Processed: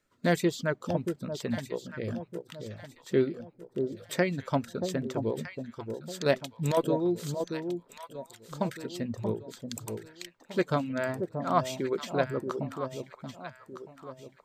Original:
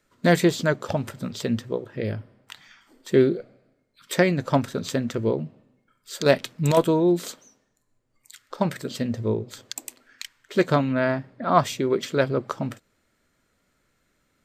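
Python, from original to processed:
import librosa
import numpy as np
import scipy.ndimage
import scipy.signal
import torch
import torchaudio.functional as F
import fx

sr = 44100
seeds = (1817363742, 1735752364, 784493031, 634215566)

y = fx.dereverb_blind(x, sr, rt60_s=0.59)
y = fx.echo_alternate(y, sr, ms=630, hz=880.0, feedback_pct=58, wet_db=-6)
y = y * librosa.db_to_amplitude(-7.0)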